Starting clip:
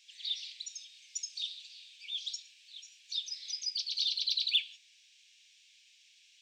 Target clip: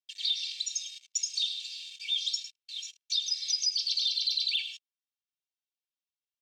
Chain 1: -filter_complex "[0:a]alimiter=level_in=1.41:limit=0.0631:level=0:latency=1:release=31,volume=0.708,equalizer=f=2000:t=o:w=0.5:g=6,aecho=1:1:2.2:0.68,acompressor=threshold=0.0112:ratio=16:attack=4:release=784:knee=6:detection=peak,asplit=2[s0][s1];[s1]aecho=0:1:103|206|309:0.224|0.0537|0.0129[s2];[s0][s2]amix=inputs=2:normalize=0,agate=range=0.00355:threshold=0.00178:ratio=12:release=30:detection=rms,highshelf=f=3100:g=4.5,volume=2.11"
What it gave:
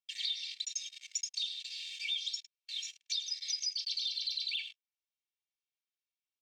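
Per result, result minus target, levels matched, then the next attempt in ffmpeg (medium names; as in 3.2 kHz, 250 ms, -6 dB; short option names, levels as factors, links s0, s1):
compression: peak gain reduction +8 dB; 2 kHz band +4.5 dB
-filter_complex "[0:a]alimiter=level_in=1.41:limit=0.0631:level=0:latency=1:release=31,volume=0.708,equalizer=f=2000:t=o:w=0.5:g=6,aecho=1:1:2.2:0.68,acompressor=threshold=0.0282:ratio=16:attack=4:release=784:knee=6:detection=peak,asplit=2[s0][s1];[s1]aecho=0:1:103|206|309:0.224|0.0537|0.0129[s2];[s0][s2]amix=inputs=2:normalize=0,agate=range=0.00355:threshold=0.00178:ratio=12:release=30:detection=rms,highshelf=f=3100:g=4.5,volume=2.11"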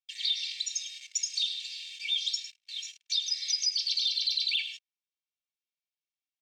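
2 kHz band +3.5 dB
-filter_complex "[0:a]alimiter=level_in=1.41:limit=0.0631:level=0:latency=1:release=31,volume=0.708,equalizer=f=2000:t=o:w=0.5:g=-5,aecho=1:1:2.2:0.68,acompressor=threshold=0.0282:ratio=16:attack=4:release=784:knee=6:detection=peak,asplit=2[s0][s1];[s1]aecho=0:1:103|206|309:0.224|0.0537|0.0129[s2];[s0][s2]amix=inputs=2:normalize=0,agate=range=0.00355:threshold=0.00178:ratio=12:release=30:detection=rms,highshelf=f=3100:g=4.5,volume=2.11"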